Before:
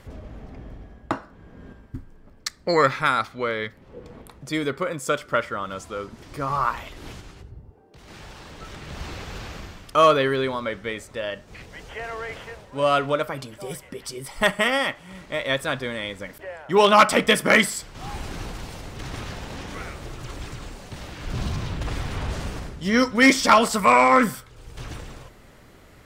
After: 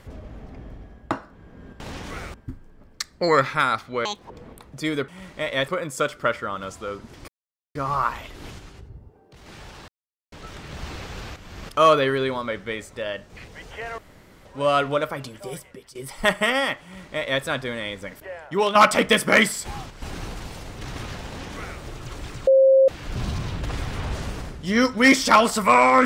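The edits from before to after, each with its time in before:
3.51–3.99 s: speed 191%
6.37 s: insert silence 0.47 s
8.50 s: insert silence 0.44 s
9.54–9.87 s: reverse
12.16–12.63 s: room tone
13.66–14.13 s: fade out, to -17 dB
15.01–15.61 s: copy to 4.77 s
16.60–16.93 s: fade out, to -10.5 dB
17.83–18.20 s: reverse
19.44–19.98 s: copy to 1.80 s
20.65–21.06 s: bleep 534 Hz -11 dBFS

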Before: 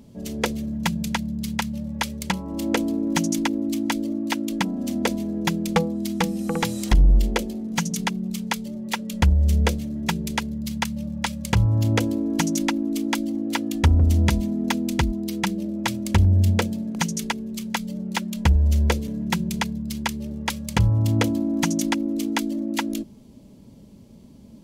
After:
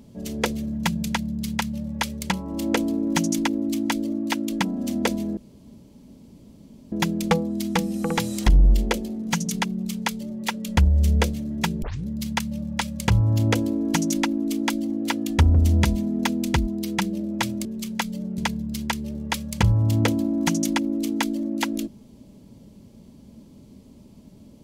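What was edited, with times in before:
5.37 s: insert room tone 1.55 s
10.27 s: tape start 0.25 s
16.10–17.40 s: delete
18.13–19.54 s: delete

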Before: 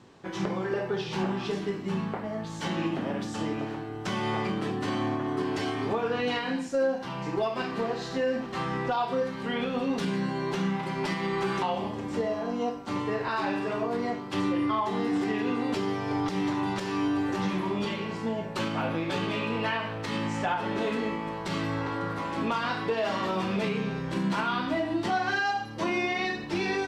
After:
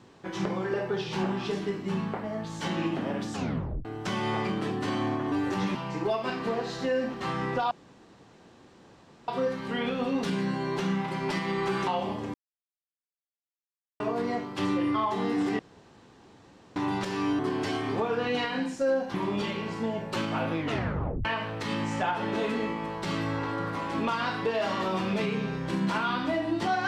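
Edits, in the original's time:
3.34 s: tape stop 0.51 s
5.32–7.07 s: swap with 17.14–17.57 s
9.03 s: insert room tone 1.57 s
12.09–13.75 s: mute
15.34–16.51 s: room tone
19.00 s: tape stop 0.68 s

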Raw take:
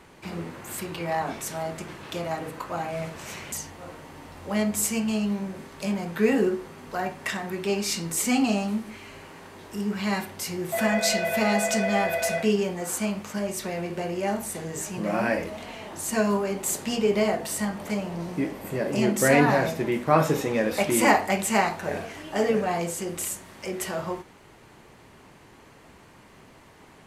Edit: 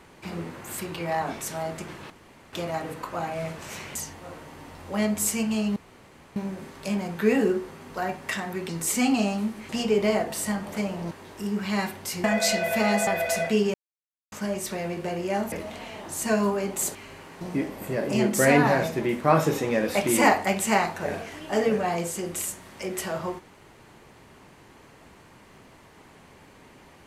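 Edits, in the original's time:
2.10 s: insert room tone 0.43 s
5.33 s: insert room tone 0.60 s
7.66–7.99 s: delete
8.99–9.45 s: swap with 16.82–18.24 s
10.58–10.85 s: delete
11.68–12.00 s: delete
12.67–13.25 s: mute
14.45–15.39 s: delete

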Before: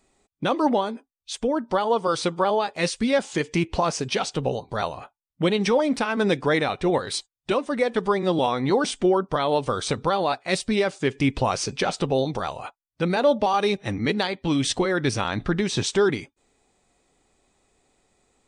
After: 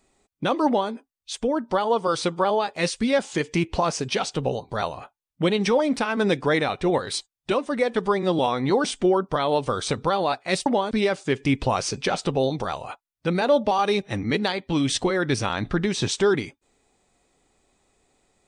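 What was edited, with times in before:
0.66–0.91 s: copy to 10.66 s

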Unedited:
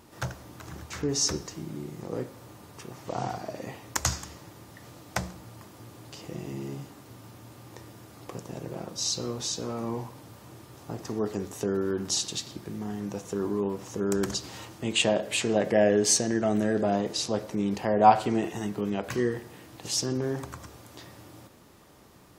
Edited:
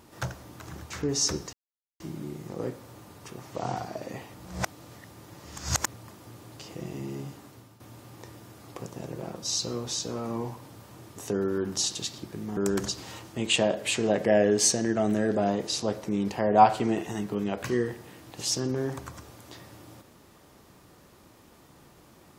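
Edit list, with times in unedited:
1.53 s: insert silence 0.47 s
3.87–5.47 s: reverse
6.99–7.33 s: fade out, to -11.5 dB
10.69–11.49 s: delete
12.90–14.03 s: delete

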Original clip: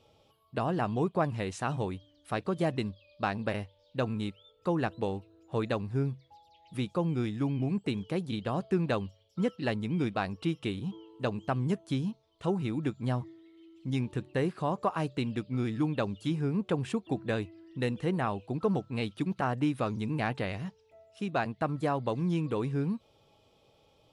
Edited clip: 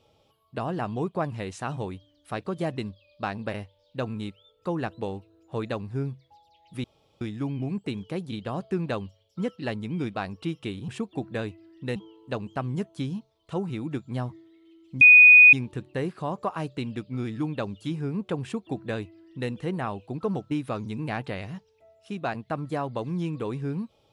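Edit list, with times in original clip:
6.84–7.21 s: room tone
13.93 s: add tone 2.48 kHz -8.5 dBFS 0.52 s
16.82–17.90 s: copy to 10.88 s
18.91–19.62 s: delete

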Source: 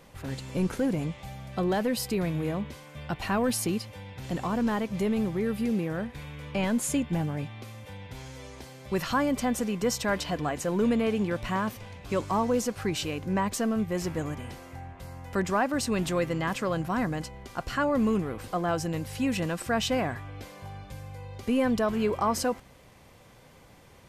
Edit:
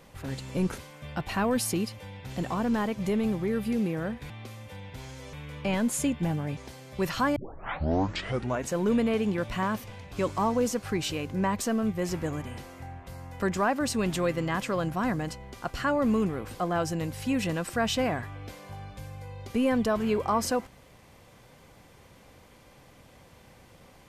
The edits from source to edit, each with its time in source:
0.78–2.71 s: delete
7.47–8.50 s: move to 6.23 s
9.29 s: tape start 1.36 s

